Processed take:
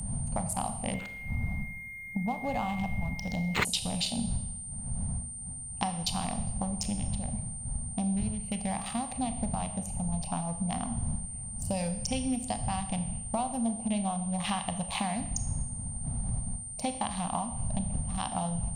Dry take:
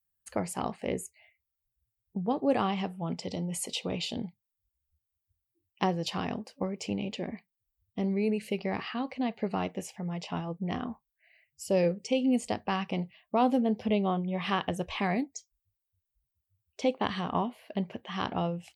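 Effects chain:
adaptive Wiener filter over 25 samples
wind on the microphone 120 Hz −37 dBFS
drawn EQ curve 230 Hz 0 dB, 360 Hz −24 dB, 760 Hz +5 dB, 1,400 Hz −6 dB, 3,900 Hz +2 dB
downward compressor 10 to 1, threshold −36 dBFS, peak gain reduction 16.5 dB
high-shelf EQ 6,300 Hz +10 dB
convolution reverb RT60 0.85 s, pre-delay 27 ms, DRR 8.5 dB
steady tone 8,900 Hz −46 dBFS
upward compression, threshold −55 dBFS
0:00.94–0:03.65: linearly interpolated sample-rate reduction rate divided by 4×
level +7 dB

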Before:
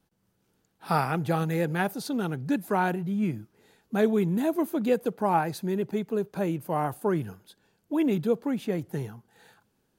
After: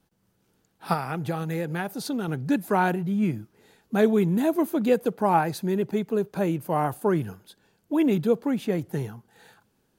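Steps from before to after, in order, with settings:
0:00.93–0:02.28: downward compressor, threshold −28 dBFS, peak gain reduction 9 dB
level +3 dB

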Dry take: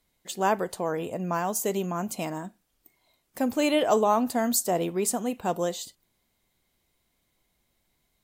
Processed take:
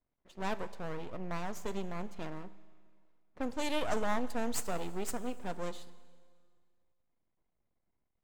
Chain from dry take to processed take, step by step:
elliptic low-pass filter 12,000 Hz
low-pass that shuts in the quiet parts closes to 1,200 Hz, open at −20.5 dBFS
half-wave rectification
four-comb reverb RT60 1.9 s, combs from 31 ms, DRR 15.5 dB
level −5.5 dB

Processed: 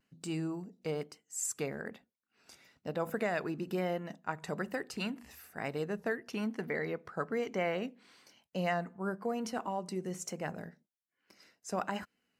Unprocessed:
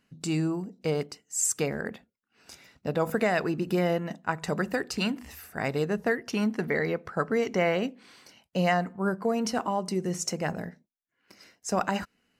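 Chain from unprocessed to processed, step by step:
low-shelf EQ 69 Hz −11.5 dB
pitch vibrato 1.1 Hz 47 cents
dynamic equaliser 5,500 Hz, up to −4 dB, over −49 dBFS, Q 1.5
level −7.5 dB

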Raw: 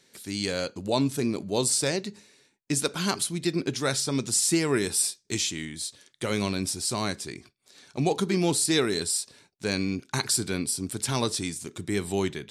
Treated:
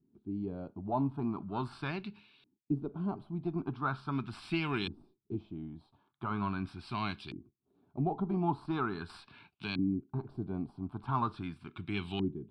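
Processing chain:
one-sided soft clipper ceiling −10.5 dBFS
phaser with its sweep stopped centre 1,900 Hz, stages 6
auto-filter low-pass saw up 0.41 Hz 290–3,200 Hz
0:09.09–0:09.79: multiband upward and downward compressor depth 40%
level −3.5 dB

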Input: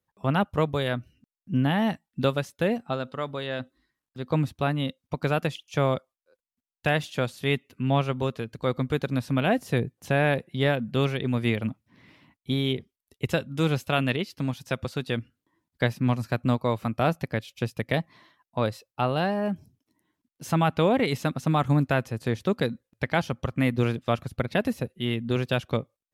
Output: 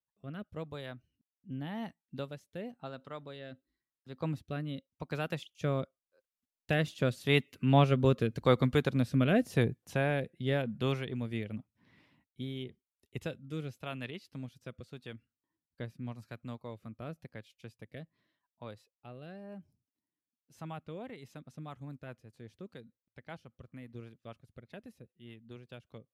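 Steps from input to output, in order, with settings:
source passing by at 0:08.17, 8 m/s, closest 7.2 metres
rotating-speaker cabinet horn 0.9 Hz, later 5 Hz, at 0:20.44
level +3 dB

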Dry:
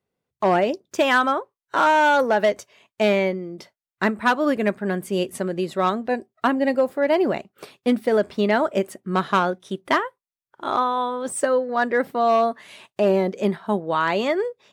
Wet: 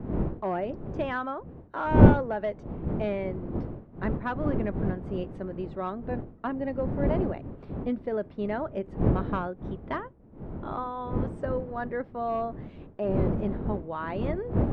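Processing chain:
wind on the microphone 290 Hz −20 dBFS
head-to-tape spacing loss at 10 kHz 36 dB
level −9 dB

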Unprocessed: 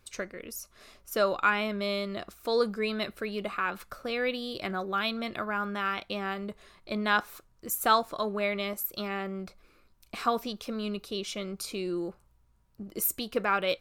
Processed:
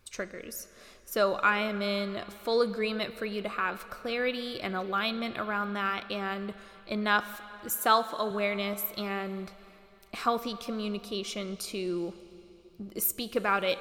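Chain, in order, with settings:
0:07.75–0:08.31: high-pass filter 190 Hz
convolution reverb RT60 3.4 s, pre-delay 36 ms, DRR 13.5 dB

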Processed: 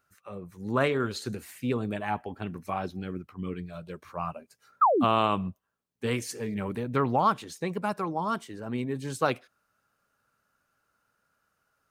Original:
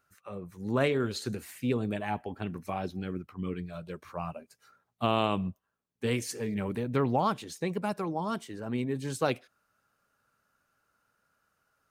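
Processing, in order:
sound drawn into the spectrogram fall, 0:04.81–0:05.05, 200–1,400 Hz −24 dBFS
dynamic equaliser 1,200 Hz, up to +7 dB, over −44 dBFS, Q 1.4

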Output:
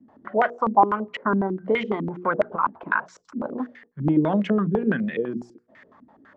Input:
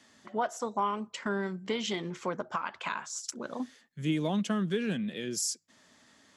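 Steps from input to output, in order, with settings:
mains-hum notches 60/120/180/240/300/360/420/480 Hz
low-pass on a step sequencer 12 Hz 250–2,000 Hz
level +6.5 dB

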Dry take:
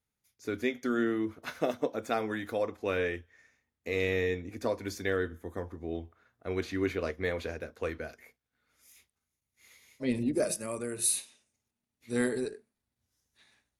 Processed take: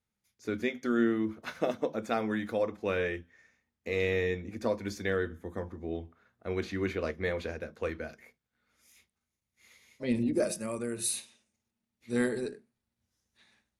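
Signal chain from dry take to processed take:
high-shelf EQ 11,000 Hz −10.5 dB
on a send: convolution reverb RT60 0.15 s, pre-delay 3 ms, DRR 17 dB

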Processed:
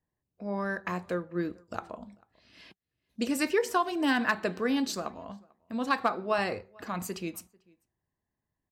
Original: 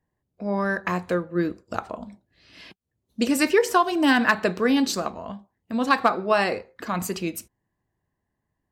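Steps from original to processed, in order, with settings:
0:06.38–0:06.84: parametric band 96 Hz +10 dB 1.2 octaves
slap from a distant wall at 76 metres, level −27 dB
level −7.5 dB

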